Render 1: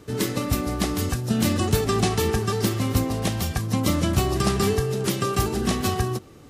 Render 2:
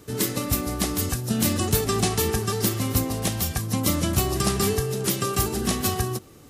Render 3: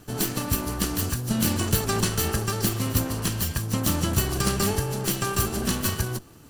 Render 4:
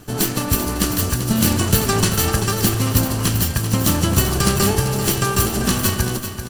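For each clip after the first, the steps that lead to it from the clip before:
high shelf 7000 Hz +11.5 dB; gain -2 dB
minimum comb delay 0.68 ms
feedback echo 0.389 s, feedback 39%, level -9.5 dB; gain +6.5 dB

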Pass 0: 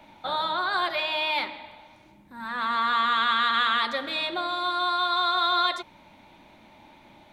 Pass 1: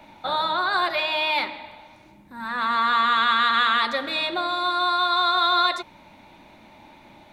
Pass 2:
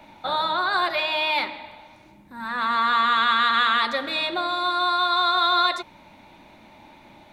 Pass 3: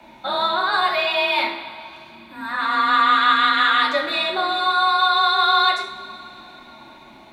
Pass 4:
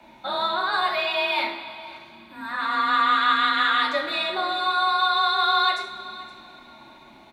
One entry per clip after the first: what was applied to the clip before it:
notch 3200 Hz, Q 15; gain +3.5 dB
nothing audible
frequency shift +27 Hz; two-slope reverb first 0.46 s, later 3.9 s, from -20 dB, DRR 0 dB
echo 0.518 s -19 dB; gain -4 dB

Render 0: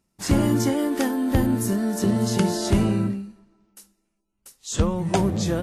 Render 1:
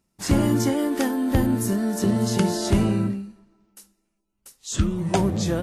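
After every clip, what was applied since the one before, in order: spectral repair 4.8–5.03, 430–1200 Hz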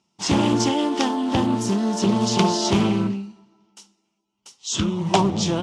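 speaker cabinet 160–7300 Hz, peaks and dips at 270 Hz -4 dB, 530 Hz -7 dB, 900 Hz +7 dB, 1700 Hz -9 dB, 3100 Hz +9 dB, 5600 Hz +5 dB; Doppler distortion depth 0.28 ms; gain +4 dB

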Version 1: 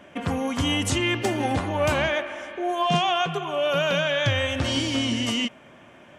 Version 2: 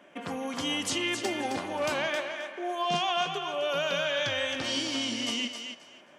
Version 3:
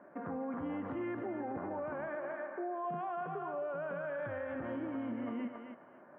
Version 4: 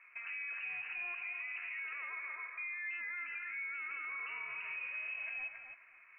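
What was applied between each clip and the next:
HPF 230 Hz 12 dB/oct; dynamic EQ 4800 Hz, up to +7 dB, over -46 dBFS, Q 1.7; on a send: thinning echo 0.266 s, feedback 20%, high-pass 410 Hz, level -7 dB; on the sum: gain -6.5 dB
steep low-pass 1600 Hz 36 dB/oct; dynamic EQ 1100 Hz, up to -4 dB, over -41 dBFS, Q 0.83; limiter -31.5 dBFS, peak gain reduction 9.5 dB
inverted band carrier 2800 Hz; gain -3.5 dB

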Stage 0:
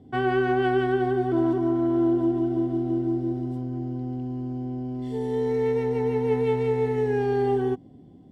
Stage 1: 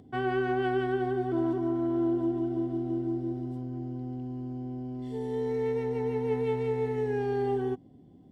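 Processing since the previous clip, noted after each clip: upward compressor, threshold -45 dBFS; gain -5.5 dB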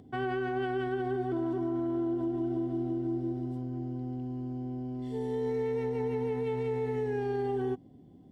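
limiter -24.5 dBFS, peak gain reduction 6 dB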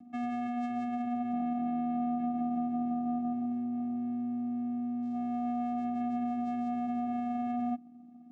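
vocoder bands 4, square 242 Hz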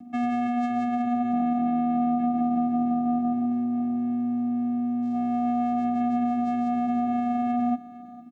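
feedback echo 0.457 s, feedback 35%, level -17.5 dB; gain +8.5 dB

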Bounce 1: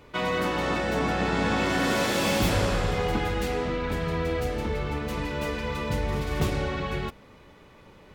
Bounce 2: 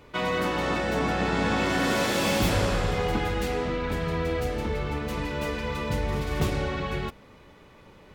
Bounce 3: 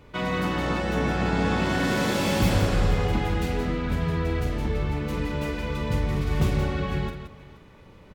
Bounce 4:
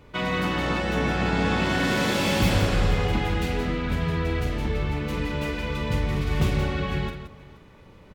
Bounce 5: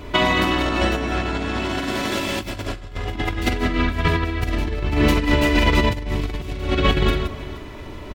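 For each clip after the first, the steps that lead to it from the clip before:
nothing audible
tone controls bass +6 dB, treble -1 dB; on a send: tapped delay 48/173/476 ms -10/-9/-19.5 dB; on the sum: gain -2 dB
dynamic EQ 2800 Hz, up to +4 dB, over -46 dBFS, Q 0.86
comb 3 ms, depth 62%; negative-ratio compressor -28 dBFS, ratio -0.5; gain +8.5 dB

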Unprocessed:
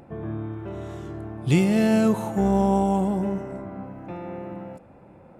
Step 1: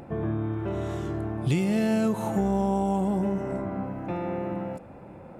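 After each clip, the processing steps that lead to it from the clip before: compressor 4:1, threshold -28 dBFS, peak gain reduction 11.5 dB; gain +4.5 dB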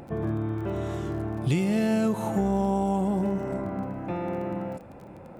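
crackle 26/s -40 dBFS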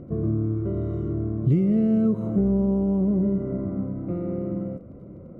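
running mean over 52 samples; gain +5.5 dB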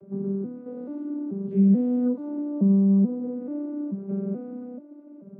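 arpeggiated vocoder major triad, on G3, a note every 0.434 s

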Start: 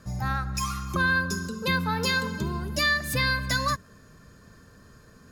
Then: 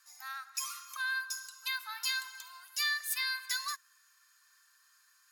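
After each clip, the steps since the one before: Bessel high-pass 1700 Hz, order 8; high shelf 8300 Hz +9.5 dB; gain -6.5 dB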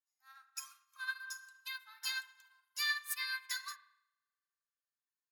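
spring tank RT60 1.9 s, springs 36 ms, chirp 40 ms, DRR 3.5 dB; upward expander 2.5:1, over -53 dBFS; gain -1 dB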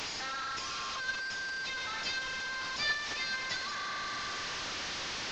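delta modulation 32 kbps, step -33.5 dBFS; gain +2.5 dB

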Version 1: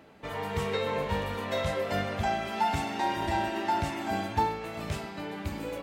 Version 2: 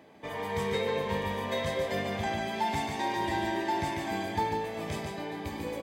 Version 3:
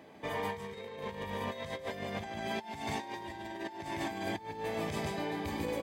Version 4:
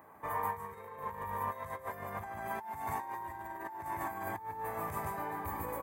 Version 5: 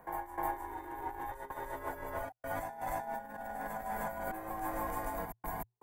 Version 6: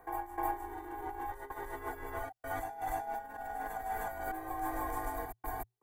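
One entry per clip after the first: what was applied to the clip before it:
notch comb 1400 Hz; dynamic EQ 730 Hz, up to -5 dB, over -39 dBFS, Q 1.9; on a send: echo 0.145 s -4.5 dB
negative-ratio compressor -35 dBFS, ratio -0.5; gain -2.5 dB
EQ curve 100 Hz 0 dB, 230 Hz -9 dB, 650 Hz -3 dB, 1100 Hz +10 dB, 2100 Hz -5 dB, 3200 Hz -18 dB, 5000 Hz -16 dB, 13000 Hz +13 dB; gain -1.5 dB
step gate "x.xxxxx.xxxx.x.x" 80 bpm -60 dB; frequency shift -120 Hz; reverse echo 0.307 s -4 dB
comb 2.6 ms, depth 86%; gain -2.5 dB

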